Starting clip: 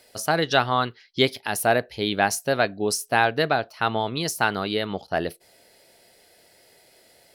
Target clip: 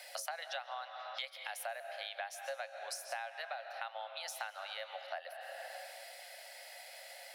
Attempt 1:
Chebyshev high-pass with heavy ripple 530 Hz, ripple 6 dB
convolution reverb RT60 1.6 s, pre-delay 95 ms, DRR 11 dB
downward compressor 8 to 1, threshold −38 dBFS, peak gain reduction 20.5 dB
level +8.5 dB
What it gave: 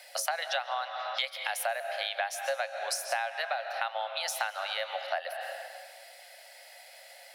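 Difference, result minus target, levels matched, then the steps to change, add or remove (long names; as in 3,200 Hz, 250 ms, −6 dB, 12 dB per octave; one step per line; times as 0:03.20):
downward compressor: peak gain reduction −10 dB
change: downward compressor 8 to 1, threshold −49.5 dBFS, peak gain reduction 30.5 dB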